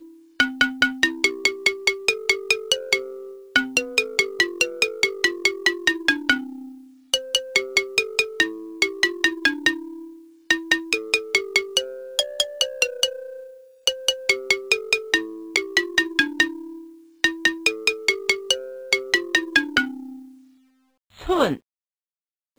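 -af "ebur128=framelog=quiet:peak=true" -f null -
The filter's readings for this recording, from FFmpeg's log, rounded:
Integrated loudness:
  I:         -21.3 LUFS
  Threshold: -32.0 LUFS
Loudness range:
  LRA:         2.0 LU
  Threshold: -42.0 LUFS
  LRA low:   -23.0 LUFS
  LRA high:  -21.0 LUFS
True peak:
  Peak:       -2.6 dBFS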